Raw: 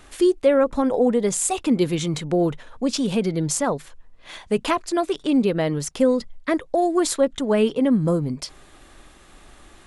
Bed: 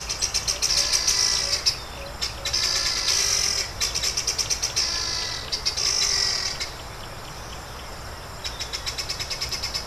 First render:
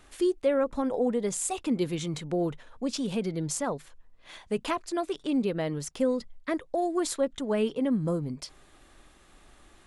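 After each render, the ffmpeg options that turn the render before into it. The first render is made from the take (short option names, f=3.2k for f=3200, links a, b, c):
-af "volume=-8dB"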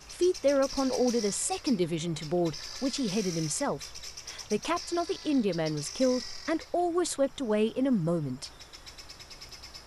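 -filter_complex "[1:a]volume=-18dB[a];[0:a][a]amix=inputs=2:normalize=0"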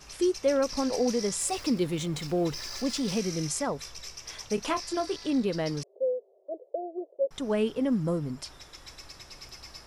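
-filter_complex "[0:a]asettb=1/sr,asplit=3[a][b][c];[a]atrim=end=1.404[d];[b]atrim=start=1.4:end=3.19,asetpts=PTS-STARTPTS,afade=t=in:d=0.004:c=qsin,afade=t=out:st=1.786:d=0.004:c=qsin,aeval=exprs='val(0)+0.5*0.00794*sgn(val(0))':c=same[e];[c]atrim=start=3.186[f];[d][e]acrossfade=d=0.004:c1=hsin:c2=qsin[g];[g][f]acrossfade=d=0.004:c1=qsin:c2=hsin,asettb=1/sr,asplit=3[h][i][j];[h]atrim=end=4.554[k];[i]atrim=start=4.55:end=5.15,asetpts=PTS-STARTPTS,afade=t=in:d=0.004:c=qsin,afade=t=out:st=0.596:d=0.004:c=qsin,asplit=2[l][m];[m]adelay=25,volume=-9dB[n];[l][n]amix=inputs=2:normalize=0,atrim=end_sample=26460[o];[j]atrim=start=5.146[p];[k][o]acrossfade=d=0.004:c1=hsin:c2=qsin[q];[q][p]acrossfade=d=0.004:c1=qsin:c2=hsin,asettb=1/sr,asplit=3[r][s][t];[r]atrim=end=5.834[u];[s]atrim=start=5.83:end=7.31,asetpts=PTS-STARTPTS,afade=t=in:d=0.004:c=qsin,afade=t=out:st=1.476:d=0.004:c=qsin,asuperpass=centerf=500:order=8:qfactor=1.8[v];[t]atrim=start=7.306[w];[u][v]acrossfade=d=0.004:c1=hsin:c2=qsin[x];[x][w]acrossfade=d=0.004:c1=qsin:c2=hsin"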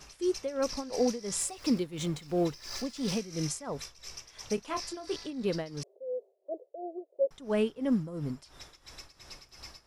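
-af "tremolo=f=2.9:d=0.83"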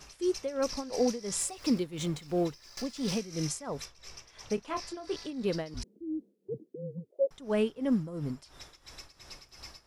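-filter_complex "[0:a]asettb=1/sr,asplit=3[a][b][c];[a]atrim=end=3.854[d];[b]atrim=start=3.85:end=5.17,asetpts=PTS-STARTPTS,afade=t=in:d=0.004:c=qsin,afade=t=out:st=1.316:d=0.004:c=qsin,highshelf=f=4.8k:g=-7.5[e];[c]atrim=start=5.166[f];[d][e]acrossfade=d=0.004:c1=hsin:c2=qsin[g];[g][f]acrossfade=d=0.004:c1=qsin:c2=hsin,asettb=1/sr,asplit=3[h][i][j];[h]atrim=end=5.744[k];[i]atrim=start=5.74:end=7.11,asetpts=PTS-STARTPTS,afade=t=in:d=0.004:c=qsin,afade=t=out:st=1.366:d=0.004:c=qsin,afreqshift=-190[l];[j]atrim=start=7.106[m];[k][l]acrossfade=d=0.004:c1=hsin:c2=qsin[n];[n][m]acrossfade=d=0.004:c1=qsin:c2=hsin,asplit=2[o][p];[o]atrim=end=2.77,asetpts=PTS-STARTPTS,afade=t=out:st=2.37:d=0.4:silence=0.1[q];[p]atrim=start=2.77,asetpts=PTS-STARTPTS,afade=t=in:d=0.004:c=hsin:silence=0.1[r];[q][r]concat=n=2:v=0:a=1"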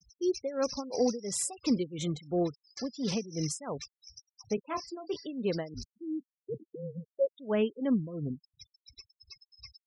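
-af "highpass=61,afftfilt=real='re*gte(hypot(re,im),0.01)':imag='im*gte(hypot(re,im),0.01)':win_size=1024:overlap=0.75"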